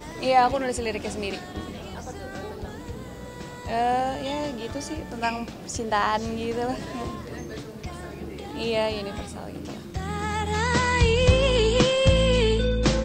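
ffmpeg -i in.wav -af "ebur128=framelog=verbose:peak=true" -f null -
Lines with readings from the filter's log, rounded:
Integrated loudness:
  I:         -24.5 LUFS
  Threshold: -35.8 LUFS
Loudness range:
  LRA:         9.9 LU
  Threshold: -47.3 LUFS
  LRA low:   -31.8 LUFS
  LRA high:  -21.9 LUFS
True peak:
  Peak:       -5.3 dBFS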